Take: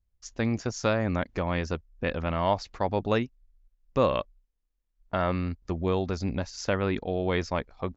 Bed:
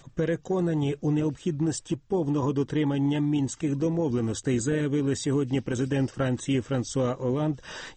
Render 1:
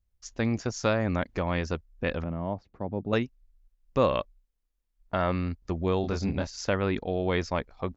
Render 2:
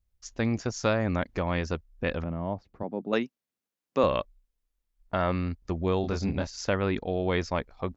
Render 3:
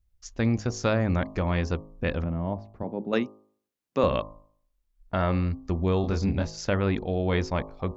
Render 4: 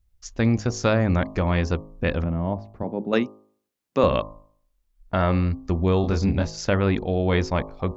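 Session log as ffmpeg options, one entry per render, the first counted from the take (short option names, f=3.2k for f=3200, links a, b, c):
-filter_complex "[0:a]asettb=1/sr,asplit=3[a][b][c];[a]atrim=end=2.244[d];[b]atrim=start=2.24:end=3.13,asetpts=PTS-STARTPTS,afade=t=in:d=0.004:c=qsin,afade=t=out:st=0.886:d=0.004:c=qsin,bandpass=f=190:t=q:w=0.8[e];[c]atrim=start=3.126[f];[d][e]acrossfade=d=0.004:c1=hsin:c2=qsin[g];[g][f]acrossfade=d=0.004:c1=qsin:c2=hsin,asettb=1/sr,asplit=3[h][i][j];[h]atrim=end=6.014[k];[i]atrim=start=6.01:end=6.47,asetpts=PTS-STARTPTS,afade=t=in:d=0.004:c=qsin,afade=t=out:st=0.456:d=0.004:c=qsin,asplit=2[l][m];[m]adelay=25,volume=-4dB[n];[l][n]amix=inputs=2:normalize=0,atrim=end_sample=20286[o];[j]atrim=start=6.466[p];[k][o]acrossfade=d=0.004:c1=hsin:c2=qsin[q];[q][p]acrossfade=d=0.004:c1=qsin:c2=hsin"
-filter_complex "[0:a]asettb=1/sr,asplit=3[a][b][c];[a]atrim=end=2.834[d];[b]atrim=start=2.83:end=4.04,asetpts=PTS-STARTPTS,afade=t=in:d=0.004:c=qsin,afade=t=out:st=1.206:d=0.004:c=qsin,highpass=f=180:w=0.5412,highpass=f=180:w=1.3066[e];[c]atrim=start=4.036[f];[d][e]acrossfade=d=0.004:c1=hsin:c2=qsin[g];[g][f]acrossfade=d=0.004:c1=qsin:c2=hsin"
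-af "lowshelf=f=210:g=6.5,bandreject=f=52.68:t=h:w=4,bandreject=f=105.36:t=h:w=4,bandreject=f=158.04:t=h:w=4,bandreject=f=210.72:t=h:w=4,bandreject=f=263.4:t=h:w=4,bandreject=f=316.08:t=h:w=4,bandreject=f=368.76:t=h:w=4,bandreject=f=421.44:t=h:w=4,bandreject=f=474.12:t=h:w=4,bandreject=f=526.8:t=h:w=4,bandreject=f=579.48:t=h:w=4,bandreject=f=632.16:t=h:w=4,bandreject=f=684.84:t=h:w=4,bandreject=f=737.52:t=h:w=4,bandreject=f=790.2:t=h:w=4,bandreject=f=842.88:t=h:w=4,bandreject=f=895.56:t=h:w=4,bandreject=f=948.24:t=h:w=4,bandreject=f=1.00092k:t=h:w=4,bandreject=f=1.0536k:t=h:w=4,bandreject=f=1.10628k:t=h:w=4,bandreject=f=1.15896k:t=h:w=4,bandreject=f=1.21164k:t=h:w=4"
-af "volume=4dB"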